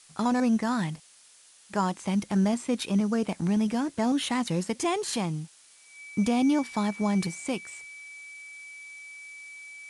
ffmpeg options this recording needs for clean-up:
ffmpeg -i in.wav -af "bandreject=frequency=2300:width=30,afftdn=noise_reduction=17:noise_floor=-56" out.wav

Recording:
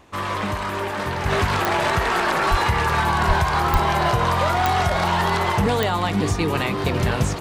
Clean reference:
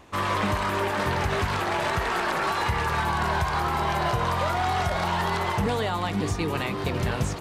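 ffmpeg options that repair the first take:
ffmpeg -i in.wav -filter_complex "[0:a]adeclick=threshold=4,asplit=3[link_01][link_02][link_03];[link_01]afade=type=out:start_time=2.5:duration=0.02[link_04];[link_02]highpass=frequency=140:width=0.5412,highpass=frequency=140:width=1.3066,afade=type=in:start_time=2.5:duration=0.02,afade=type=out:start_time=2.62:duration=0.02[link_05];[link_03]afade=type=in:start_time=2.62:duration=0.02[link_06];[link_04][link_05][link_06]amix=inputs=3:normalize=0,asplit=3[link_07][link_08][link_09];[link_07]afade=type=out:start_time=3.27:duration=0.02[link_10];[link_08]highpass=frequency=140:width=0.5412,highpass=frequency=140:width=1.3066,afade=type=in:start_time=3.27:duration=0.02,afade=type=out:start_time=3.39:duration=0.02[link_11];[link_09]afade=type=in:start_time=3.39:duration=0.02[link_12];[link_10][link_11][link_12]amix=inputs=3:normalize=0,asplit=3[link_13][link_14][link_15];[link_13]afade=type=out:start_time=3.72:duration=0.02[link_16];[link_14]highpass=frequency=140:width=0.5412,highpass=frequency=140:width=1.3066,afade=type=in:start_time=3.72:duration=0.02,afade=type=out:start_time=3.84:duration=0.02[link_17];[link_15]afade=type=in:start_time=3.84:duration=0.02[link_18];[link_16][link_17][link_18]amix=inputs=3:normalize=0,asetnsamples=nb_out_samples=441:pad=0,asendcmd='1.26 volume volume -5.5dB',volume=0dB" out.wav

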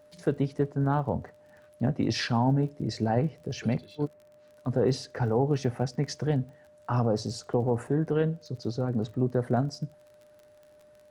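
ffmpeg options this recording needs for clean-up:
ffmpeg -i in.wav -af "adeclick=threshold=4,bandreject=frequency=600:width=30" out.wav

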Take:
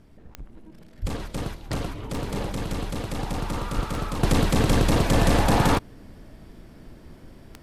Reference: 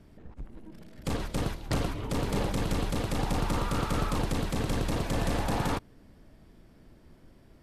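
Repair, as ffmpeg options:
ffmpeg -i in.wav -filter_complex "[0:a]adeclick=threshold=4,asplit=3[link_01][link_02][link_03];[link_01]afade=type=out:start_time=1.01:duration=0.02[link_04];[link_02]highpass=frequency=140:width=0.5412,highpass=frequency=140:width=1.3066,afade=type=in:start_time=1.01:duration=0.02,afade=type=out:start_time=1.13:duration=0.02[link_05];[link_03]afade=type=in:start_time=1.13:duration=0.02[link_06];[link_04][link_05][link_06]amix=inputs=3:normalize=0,asplit=3[link_07][link_08][link_09];[link_07]afade=type=out:start_time=3.75:duration=0.02[link_10];[link_08]highpass=frequency=140:width=0.5412,highpass=frequency=140:width=1.3066,afade=type=in:start_time=3.75:duration=0.02,afade=type=out:start_time=3.87:duration=0.02[link_11];[link_09]afade=type=in:start_time=3.87:duration=0.02[link_12];[link_10][link_11][link_12]amix=inputs=3:normalize=0,agate=range=-21dB:threshold=-40dB,asetnsamples=nb_out_samples=441:pad=0,asendcmd='4.23 volume volume -9.5dB',volume=0dB" out.wav

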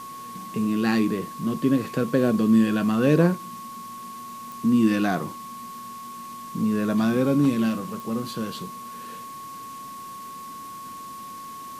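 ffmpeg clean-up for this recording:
ffmpeg -i in.wav -af "adeclick=threshold=4,bandreject=frequency=1100:width=30,afwtdn=0.0045" out.wav

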